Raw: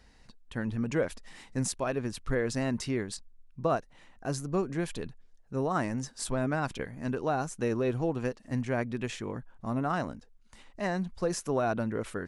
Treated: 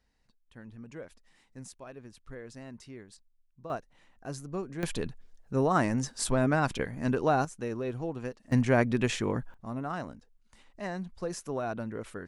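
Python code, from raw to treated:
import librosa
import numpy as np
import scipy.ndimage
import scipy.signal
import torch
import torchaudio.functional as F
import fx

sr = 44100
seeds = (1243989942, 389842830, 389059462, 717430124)

y = fx.gain(x, sr, db=fx.steps((0.0, -15.0), (3.7, -6.0), (4.83, 4.0), (7.45, -5.0), (8.52, 6.5), (9.54, -5.0)))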